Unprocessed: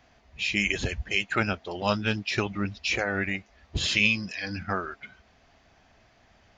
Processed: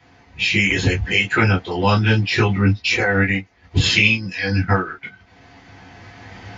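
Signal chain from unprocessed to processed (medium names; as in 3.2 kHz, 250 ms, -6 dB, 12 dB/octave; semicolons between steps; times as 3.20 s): recorder AGC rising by 7.6 dB/s; transient shaper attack 0 dB, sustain +4 dB, from 2.70 s sustain -8 dB; reverberation, pre-delay 3 ms, DRR -6 dB; trim -7 dB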